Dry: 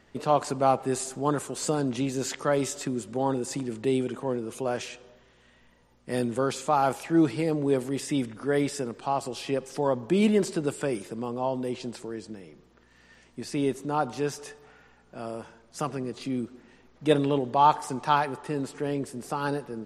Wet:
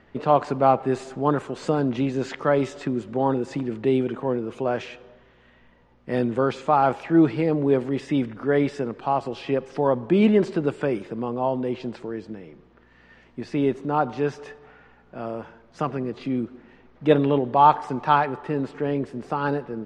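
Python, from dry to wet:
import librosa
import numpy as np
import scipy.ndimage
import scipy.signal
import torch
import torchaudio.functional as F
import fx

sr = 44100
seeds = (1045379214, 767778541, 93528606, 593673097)

y = scipy.signal.sosfilt(scipy.signal.butter(2, 2700.0, 'lowpass', fs=sr, output='sos'), x)
y = y * 10.0 ** (4.5 / 20.0)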